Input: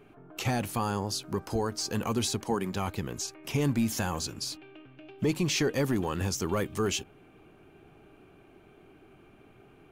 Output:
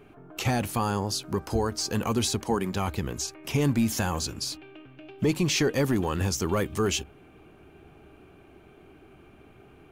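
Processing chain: bell 70 Hz +11.5 dB 0.25 oct; gain +3 dB

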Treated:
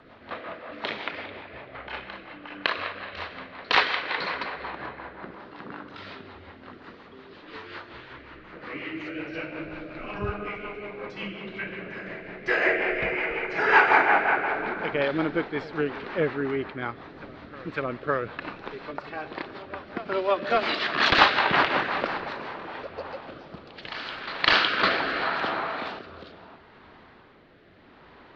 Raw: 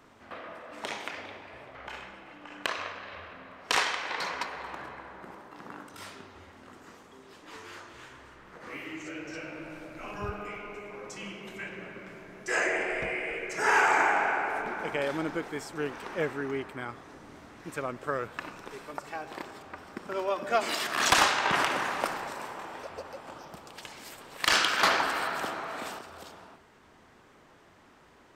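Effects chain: elliptic low-pass 4300 Hz, stop band 80 dB; reverse echo 0.558 s -18 dB; rotary speaker horn 5.5 Hz, later 0.75 Hz, at 22.36; gain +8 dB

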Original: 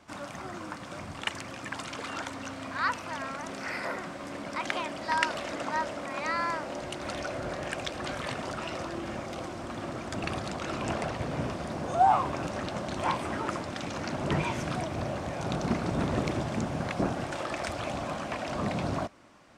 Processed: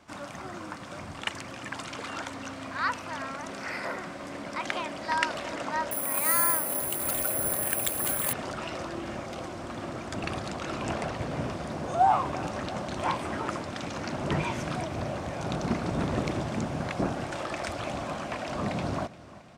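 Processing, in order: feedback echo 0.348 s, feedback 58%, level -19 dB; 5.91–8.33 careless resampling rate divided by 4×, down filtered, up zero stuff

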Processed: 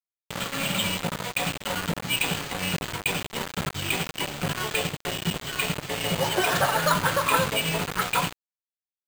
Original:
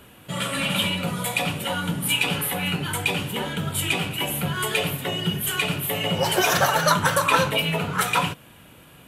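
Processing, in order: bit-crush 4-bit; careless resampling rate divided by 4×, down filtered, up hold; gain -3 dB

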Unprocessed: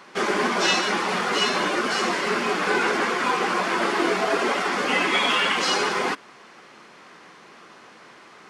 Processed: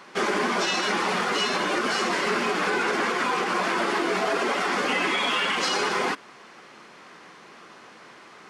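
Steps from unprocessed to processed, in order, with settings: limiter -15.5 dBFS, peak gain reduction 7.5 dB

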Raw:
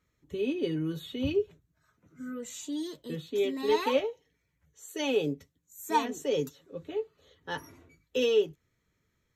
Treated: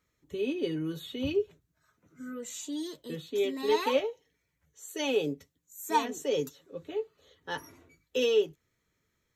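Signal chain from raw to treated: tone controls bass -4 dB, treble +2 dB

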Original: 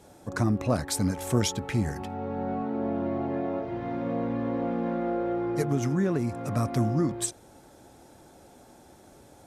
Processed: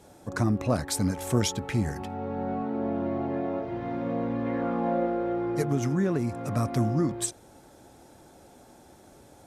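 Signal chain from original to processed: 4.45–5.05 bell 2400 Hz -> 490 Hz +9 dB 0.67 oct

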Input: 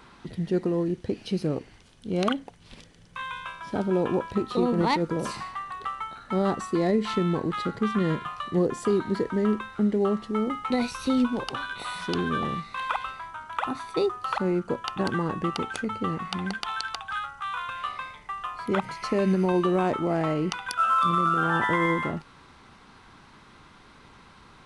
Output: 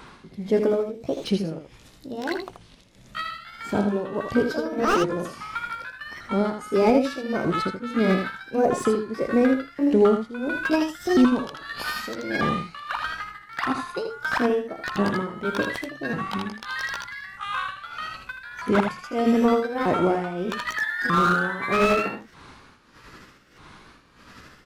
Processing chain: repeated pitch sweeps +6 st, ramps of 1.241 s; tremolo 1.6 Hz, depth 79%; on a send: echo 80 ms -7.5 dB; on the sum: slew limiter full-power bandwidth 79 Hz; gain +6.5 dB

